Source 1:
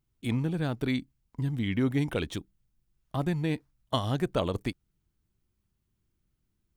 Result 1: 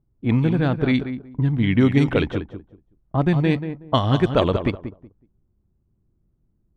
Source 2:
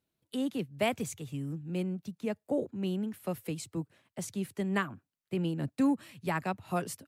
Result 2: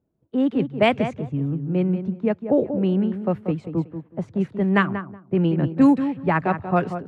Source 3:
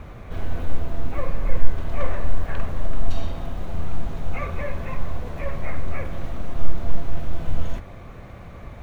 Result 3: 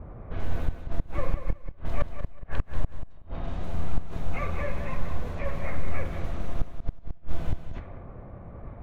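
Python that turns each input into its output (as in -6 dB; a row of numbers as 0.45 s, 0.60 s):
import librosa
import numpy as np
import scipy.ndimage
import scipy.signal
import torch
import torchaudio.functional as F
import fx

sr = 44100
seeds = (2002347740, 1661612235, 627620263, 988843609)

y = fx.gate_flip(x, sr, shuts_db=-9.0, range_db=-31)
y = fx.echo_feedback(y, sr, ms=186, feedback_pct=21, wet_db=-9.5)
y = fx.env_lowpass(y, sr, base_hz=650.0, full_db=-18.5)
y = y * 10.0 ** (-22 / 20.0) / np.sqrt(np.mean(np.square(y)))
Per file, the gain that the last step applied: +10.0 dB, +12.0 dB, -2.5 dB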